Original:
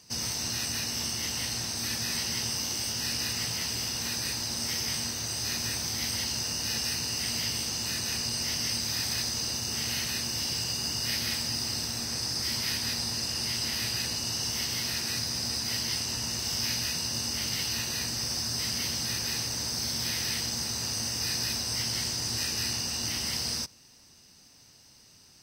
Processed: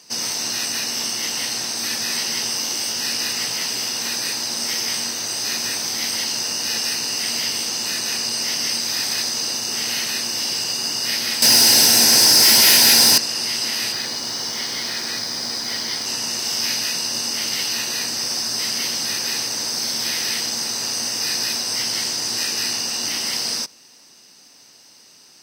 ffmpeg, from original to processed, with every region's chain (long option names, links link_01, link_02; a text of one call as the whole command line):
ffmpeg -i in.wav -filter_complex "[0:a]asettb=1/sr,asplit=3[link_01][link_02][link_03];[link_01]atrim=end=11.424[link_04];[link_02]atrim=start=11.42:end=13.18,asetpts=PTS-STARTPTS,afade=type=in:duration=0.004:curve=qsin,afade=type=out:start_time=1.756:duration=0.004:curve=qsin,equalizer=frequency=12000:width_type=o:width=0.63:gain=11.5,aeval=exprs='0.158*sin(PI/2*2.82*val(0)/0.158)':channel_layout=same,asuperstop=centerf=1200:order=12:qfactor=5.9[link_05];[link_03]atrim=start=13.176[link_06];[link_04][link_05]acrossfade=duration=0.004:curve1=hsin:curve2=qsin[link_07];[link_07][link_06]acrossfade=duration=0.004:curve1=qsin:curve2=hsin,asettb=1/sr,asplit=3[link_08][link_09][link_10];[link_08]atrim=end=13.924[link_11];[link_09]atrim=start=13.92:end=16.06,asetpts=PTS-STARTPTS,afade=type=in:duration=0.004:curve=qsin,afade=type=out:start_time=2.136:duration=0.004:curve=qsin,acrossover=split=5800[link_12][link_13];[link_13]acompressor=threshold=-45dB:ratio=4:attack=1:release=60[link_14];[link_12][link_14]amix=inputs=2:normalize=0,bandreject=frequency=2700:width=6.1,acrusher=bits=8:dc=4:mix=0:aa=0.000001[link_15];[link_10]atrim=start=16.056[link_16];[link_11][link_15]acrossfade=duration=0.004:curve1=hsin:curve2=qsin[link_17];[link_17][link_16]acrossfade=duration=0.004:curve1=qsin:curve2=hsin,highpass=280,highshelf=frequency=12000:gain=-3,volume=8.5dB" out.wav